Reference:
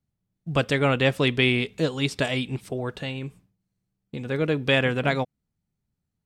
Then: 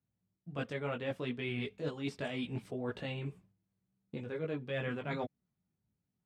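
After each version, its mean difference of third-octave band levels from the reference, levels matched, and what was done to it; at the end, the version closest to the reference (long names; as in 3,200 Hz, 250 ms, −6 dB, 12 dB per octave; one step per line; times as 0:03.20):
4.5 dB: high-pass filter 84 Hz
multi-voice chorus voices 4, 0.66 Hz, delay 19 ms, depth 2.8 ms
reversed playback
downward compressor 6 to 1, threshold −34 dBFS, peak gain reduction 15.5 dB
reversed playback
high-shelf EQ 3,500 Hz −11 dB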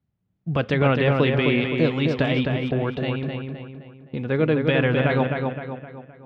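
7.0 dB: high-pass filter 51 Hz
brickwall limiter −14.5 dBFS, peak gain reduction 7.5 dB
high-frequency loss of the air 270 metres
on a send: feedback echo with a low-pass in the loop 259 ms, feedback 46%, low-pass 3,800 Hz, level −4 dB
on the sum: level +5 dB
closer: first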